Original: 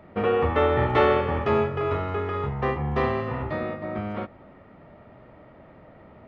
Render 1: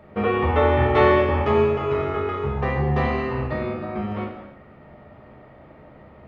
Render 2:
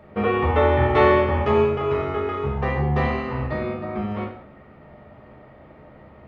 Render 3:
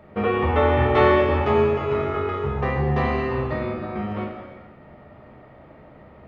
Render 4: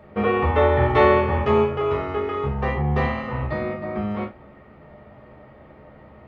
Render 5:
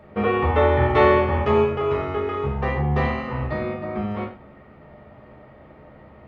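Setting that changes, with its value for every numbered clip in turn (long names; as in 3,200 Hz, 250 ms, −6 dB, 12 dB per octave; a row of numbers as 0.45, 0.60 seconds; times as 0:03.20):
reverb whose tail is shaped and stops, gate: 340, 220, 520, 100, 150 milliseconds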